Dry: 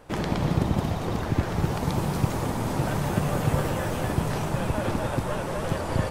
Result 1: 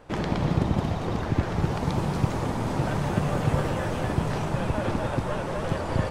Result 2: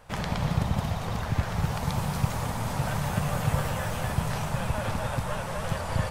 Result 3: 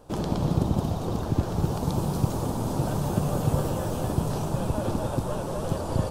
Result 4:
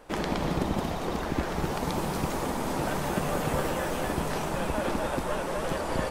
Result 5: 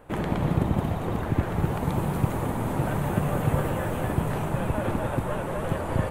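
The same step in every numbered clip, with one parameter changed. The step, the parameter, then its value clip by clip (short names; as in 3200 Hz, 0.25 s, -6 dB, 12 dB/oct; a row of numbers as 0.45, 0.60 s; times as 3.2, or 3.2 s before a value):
bell, frequency: 15000, 330, 2000, 110, 5200 Hz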